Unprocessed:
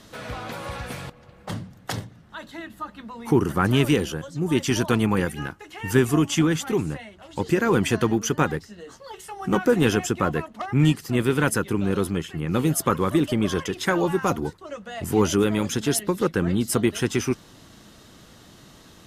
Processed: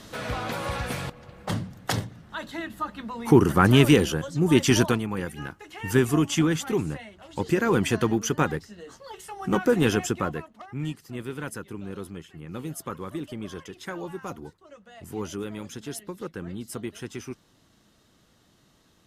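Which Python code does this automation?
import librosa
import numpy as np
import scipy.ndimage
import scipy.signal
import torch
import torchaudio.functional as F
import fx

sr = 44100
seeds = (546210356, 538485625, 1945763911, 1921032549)

y = fx.gain(x, sr, db=fx.line((4.84, 3.0), (5.04, -9.5), (5.65, -2.0), (10.1, -2.0), (10.66, -13.0)))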